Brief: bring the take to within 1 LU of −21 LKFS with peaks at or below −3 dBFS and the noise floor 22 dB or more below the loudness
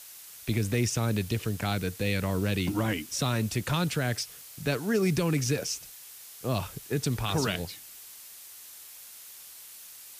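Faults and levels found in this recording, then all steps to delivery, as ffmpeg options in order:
background noise floor −48 dBFS; target noise floor −52 dBFS; integrated loudness −29.5 LKFS; sample peak −15.0 dBFS; target loudness −21.0 LKFS
→ -af "afftdn=noise_reduction=6:noise_floor=-48"
-af "volume=8.5dB"

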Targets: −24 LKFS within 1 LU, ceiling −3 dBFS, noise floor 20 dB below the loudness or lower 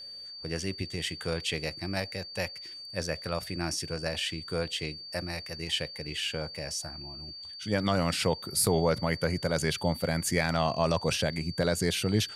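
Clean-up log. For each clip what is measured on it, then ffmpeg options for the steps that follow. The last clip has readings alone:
interfering tone 4,600 Hz; level of the tone −41 dBFS; integrated loudness −30.5 LKFS; sample peak −13.0 dBFS; target loudness −24.0 LKFS
→ -af "bandreject=frequency=4600:width=30"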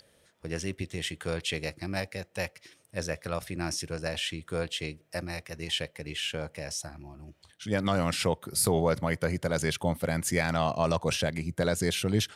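interfering tone none found; integrated loudness −31.0 LKFS; sample peak −13.5 dBFS; target loudness −24.0 LKFS
→ -af "volume=7dB"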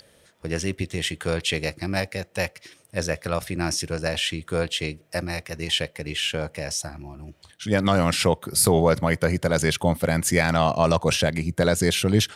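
integrated loudness −24.0 LKFS; sample peak −6.5 dBFS; background noise floor −58 dBFS

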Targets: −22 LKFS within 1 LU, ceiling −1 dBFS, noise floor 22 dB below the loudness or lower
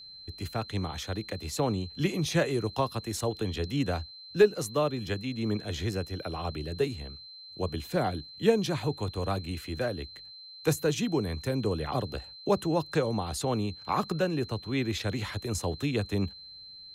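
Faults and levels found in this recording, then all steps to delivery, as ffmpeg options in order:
interfering tone 4,100 Hz; level of the tone −45 dBFS; integrated loudness −31.0 LKFS; sample peak −11.0 dBFS; target loudness −22.0 LKFS
→ -af "bandreject=frequency=4100:width=30"
-af "volume=9dB"

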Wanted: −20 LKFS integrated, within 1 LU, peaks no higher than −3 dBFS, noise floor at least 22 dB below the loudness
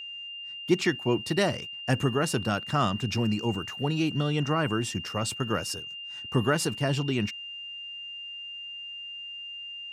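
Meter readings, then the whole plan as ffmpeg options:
interfering tone 2,800 Hz; level of the tone −37 dBFS; integrated loudness −29.0 LKFS; sample peak −10.0 dBFS; target loudness −20.0 LKFS
→ -af "bandreject=frequency=2800:width=30"
-af "volume=9dB,alimiter=limit=-3dB:level=0:latency=1"

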